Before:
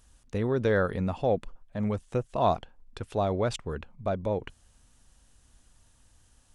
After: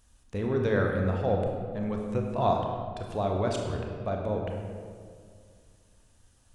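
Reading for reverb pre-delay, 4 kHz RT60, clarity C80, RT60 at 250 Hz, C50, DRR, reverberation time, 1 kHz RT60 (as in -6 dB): 25 ms, 1.2 s, 4.0 dB, 2.7 s, 2.5 dB, 1.0 dB, 2.1 s, 2.0 s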